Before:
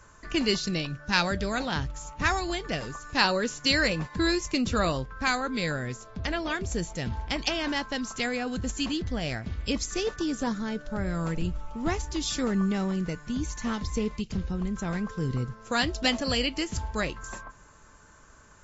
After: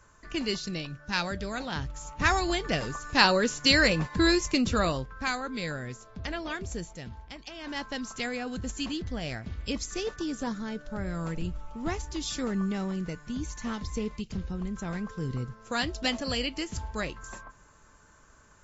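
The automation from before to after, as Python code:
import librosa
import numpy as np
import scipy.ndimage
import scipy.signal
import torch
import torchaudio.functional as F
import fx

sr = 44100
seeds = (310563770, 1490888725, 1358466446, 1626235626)

y = fx.gain(x, sr, db=fx.line((1.63, -5.0), (2.41, 2.5), (4.42, 2.5), (5.35, -4.5), (6.69, -4.5), (7.48, -16.0), (7.82, -3.5)))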